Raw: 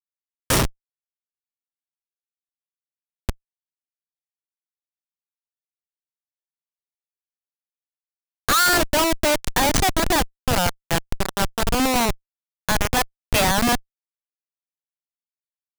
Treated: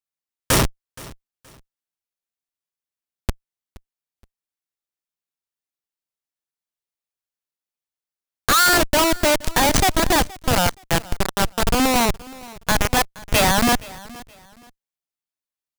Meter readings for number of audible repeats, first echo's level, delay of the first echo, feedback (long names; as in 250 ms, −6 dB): 2, −21.0 dB, 472 ms, 29%